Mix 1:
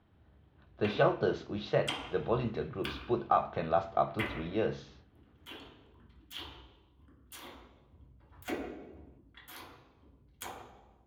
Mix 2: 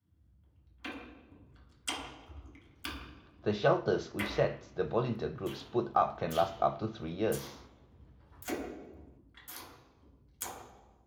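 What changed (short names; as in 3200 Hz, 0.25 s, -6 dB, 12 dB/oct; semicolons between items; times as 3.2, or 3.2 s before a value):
speech: entry +2.65 s; master: add resonant high shelf 4300 Hz +6.5 dB, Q 1.5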